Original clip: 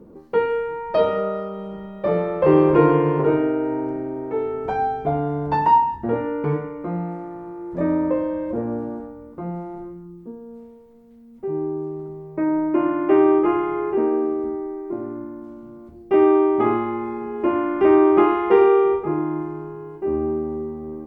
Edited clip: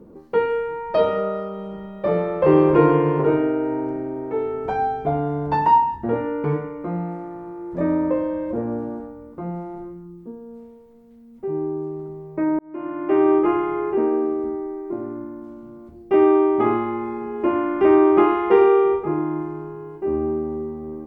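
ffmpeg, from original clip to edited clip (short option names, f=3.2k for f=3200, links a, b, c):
-filter_complex "[0:a]asplit=2[a][b];[a]atrim=end=12.59,asetpts=PTS-STARTPTS,afade=t=out:st=12.586:d=0.004:c=hsin[c];[b]atrim=start=12.59,asetpts=PTS-STARTPTS,afade=t=in:d=0.75[d];[c][d]concat=n=2:v=0:a=1"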